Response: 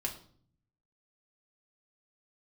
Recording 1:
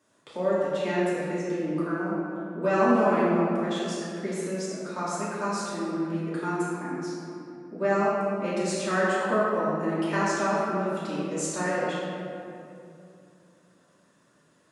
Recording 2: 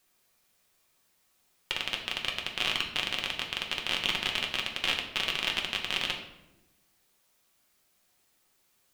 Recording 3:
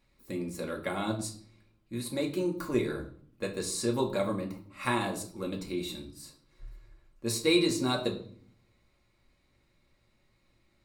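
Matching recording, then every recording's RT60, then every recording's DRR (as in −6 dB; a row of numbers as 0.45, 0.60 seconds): 3; 2.6, 0.95, 0.55 seconds; −11.0, 0.0, −0.5 decibels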